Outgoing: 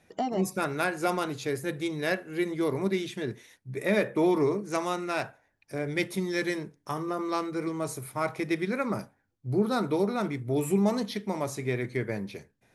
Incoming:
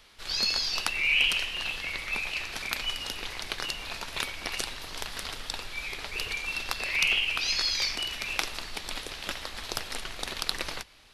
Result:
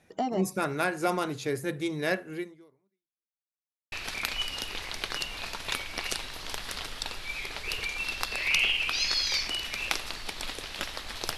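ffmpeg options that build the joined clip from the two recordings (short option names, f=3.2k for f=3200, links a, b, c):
-filter_complex "[0:a]apad=whole_dur=11.37,atrim=end=11.37,asplit=2[a][b];[a]atrim=end=3.42,asetpts=PTS-STARTPTS,afade=t=out:st=2.33:d=1.09:c=exp[c];[b]atrim=start=3.42:end=3.92,asetpts=PTS-STARTPTS,volume=0[d];[1:a]atrim=start=2.4:end=9.85,asetpts=PTS-STARTPTS,afade=t=in:d=0.004:c=hsin[e];[c][d][e]concat=n=3:v=0:a=1"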